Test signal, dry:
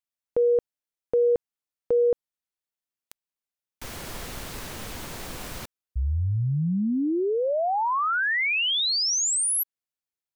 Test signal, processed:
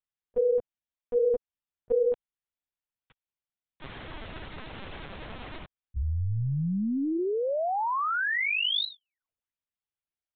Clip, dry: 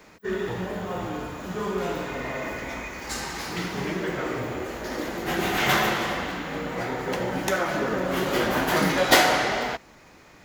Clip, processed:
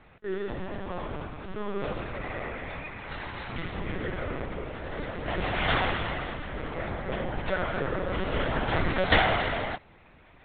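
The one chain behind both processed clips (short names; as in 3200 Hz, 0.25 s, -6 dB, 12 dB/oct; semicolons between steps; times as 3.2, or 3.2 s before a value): LPC vocoder at 8 kHz pitch kept; gain -3.5 dB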